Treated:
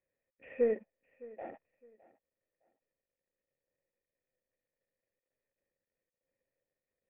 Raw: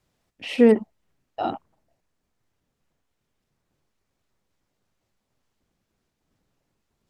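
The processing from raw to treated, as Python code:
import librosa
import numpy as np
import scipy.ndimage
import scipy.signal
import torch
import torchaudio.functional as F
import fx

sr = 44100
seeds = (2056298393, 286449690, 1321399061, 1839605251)

y = fx.cvsd(x, sr, bps=16000)
y = fx.formant_cascade(y, sr, vowel='e')
y = fx.echo_feedback(y, sr, ms=611, feedback_pct=24, wet_db=-20.5)
y = y * librosa.db_to_amplitude(-3.0)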